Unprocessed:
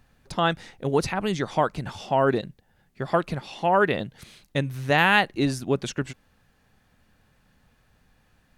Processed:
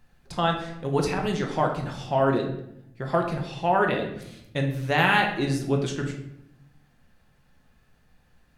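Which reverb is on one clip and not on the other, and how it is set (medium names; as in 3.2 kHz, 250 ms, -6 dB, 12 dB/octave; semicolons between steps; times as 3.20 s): simulated room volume 200 m³, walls mixed, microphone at 0.85 m; trim -3.5 dB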